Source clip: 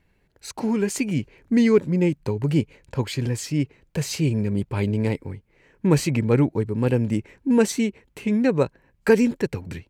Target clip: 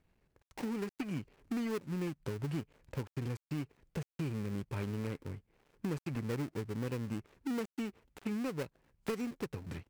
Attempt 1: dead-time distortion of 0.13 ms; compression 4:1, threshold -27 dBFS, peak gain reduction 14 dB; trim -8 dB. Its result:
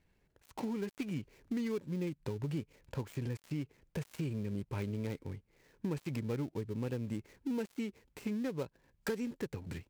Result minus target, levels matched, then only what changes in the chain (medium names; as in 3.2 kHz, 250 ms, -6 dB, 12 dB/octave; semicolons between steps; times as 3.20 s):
dead-time distortion: distortion -6 dB
change: dead-time distortion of 0.33 ms